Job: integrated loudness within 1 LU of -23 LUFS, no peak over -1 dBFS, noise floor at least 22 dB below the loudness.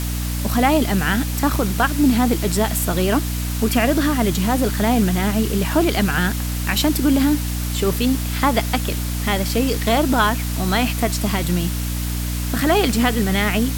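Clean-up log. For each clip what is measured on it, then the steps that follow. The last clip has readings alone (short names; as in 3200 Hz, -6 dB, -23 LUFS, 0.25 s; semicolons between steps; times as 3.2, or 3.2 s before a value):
hum 60 Hz; harmonics up to 300 Hz; hum level -21 dBFS; noise floor -24 dBFS; noise floor target -42 dBFS; loudness -19.5 LUFS; peak -3.5 dBFS; loudness target -23.0 LUFS
-> notches 60/120/180/240/300 Hz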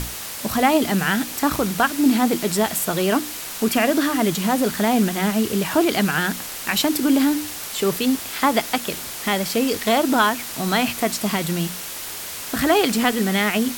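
hum none; noise floor -32 dBFS; noise floor target -43 dBFS
-> denoiser 11 dB, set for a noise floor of -32 dBFS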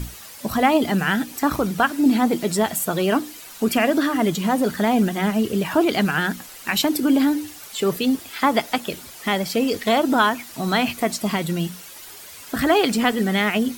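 noise floor -41 dBFS; noise floor target -43 dBFS
-> denoiser 6 dB, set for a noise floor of -41 dBFS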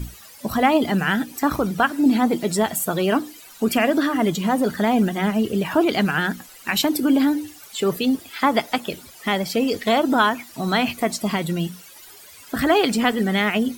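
noise floor -45 dBFS; loudness -21.0 LUFS; peak -4.0 dBFS; loudness target -23.0 LUFS
-> gain -2 dB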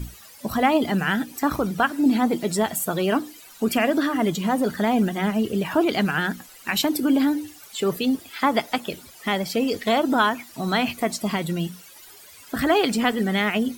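loudness -23.0 LUFS; peak -6.0 dBFS; noise floor -47 dBFS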